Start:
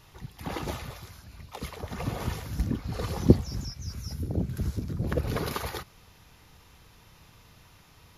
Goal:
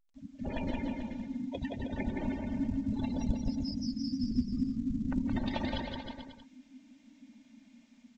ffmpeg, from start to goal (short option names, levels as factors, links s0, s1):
-af "afftdn=nr=27:nf=-38,acompressor=threshold=0.00562:ratio=3,highpass=46,dynaudnorm=f=130:g=5:m=5.62,equalizer=f=1600:t=o:w=0.33:g=-11,equalizer=f=2500:t=o:w=0.33:g=7,equalizer=f=5000:t=o:w=0.33:g=-11,aecho=1:1:170|314.5|437.3|541.7|630.5:0.631|0.398|0.251|0.158|0.1,agate=range=0.0224:threshold=0.00141:ratio=3:detection=peak,afreqshift=-330,equalizer=f=4500:t=o:w=1.1:g=8,aecho=1:1:3.3:0.56,volume=0.473" -ar 16000 -c:a pcm_alaw